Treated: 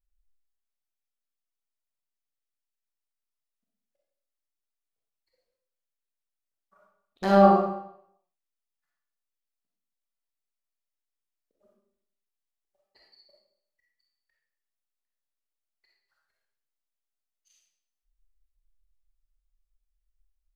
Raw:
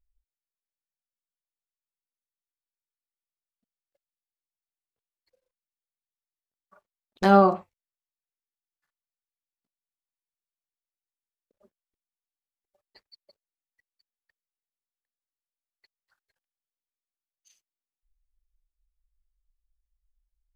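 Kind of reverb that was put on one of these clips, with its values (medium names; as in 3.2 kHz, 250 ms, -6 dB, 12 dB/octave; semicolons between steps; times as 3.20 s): algorithmic reverb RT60 0.7 s, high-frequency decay 0.95×, pre-delay 5 ms, DRR -4 dB; trim -7 dB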